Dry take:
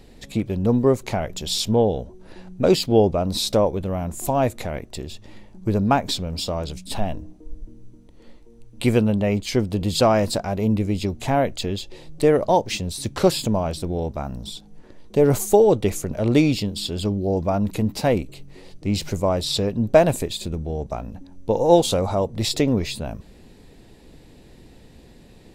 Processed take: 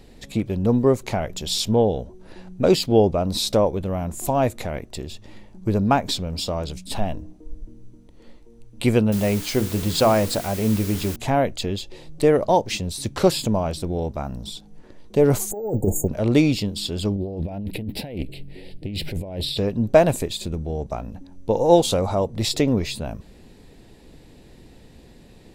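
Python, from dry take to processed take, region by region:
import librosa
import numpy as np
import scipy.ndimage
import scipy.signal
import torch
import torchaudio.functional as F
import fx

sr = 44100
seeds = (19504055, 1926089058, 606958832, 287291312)

y = fx.chain(x, sr, fx.hum_notches(base_hz=60, count=8),
    fx.quant_dither(seeds[0], bits=6, dither='triangular'), at=(9.12, 11.16))
y = fx.chain(y, sr, fx.brickwall_bandstop(low_hz=930.0, high_hz=6500.0),
    fx.over_compress(threshold_db=-20.0, ratio=-0.5),
    fx.resample_bad(factor=2, down='filtered', up='hold'), at=(15.51, 16.08))
y = fx.chain(y, sr, fx.over_compress(threshold_db=-27.0, ratio=-1.0),
    fx.fixed_phaser(hz=2800.0, stages=4),
    fx.doppler_dist(depth_ms=0.24), at=(17.15, 19.58))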